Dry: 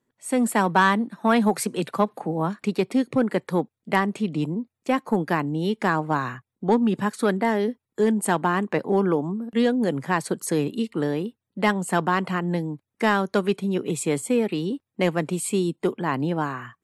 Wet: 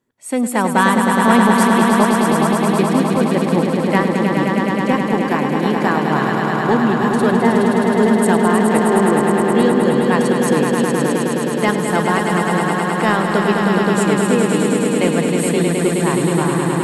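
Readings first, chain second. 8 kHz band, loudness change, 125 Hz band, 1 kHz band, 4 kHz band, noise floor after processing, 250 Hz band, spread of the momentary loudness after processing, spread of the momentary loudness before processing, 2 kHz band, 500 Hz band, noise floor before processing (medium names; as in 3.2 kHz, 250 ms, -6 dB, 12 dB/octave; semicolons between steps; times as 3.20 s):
+8.5 dB, +8.5 dB, +9.0 dB, +8.5 dB, +8.5 dB, -20 dBFS, +9.0 dB, 4 LU, 6 LU, +8.5 dB, +8.5 dB, -85 dBFS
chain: echo with a slow build-up 105 ms, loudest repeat 5, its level -5.5 dB; trim +3 dB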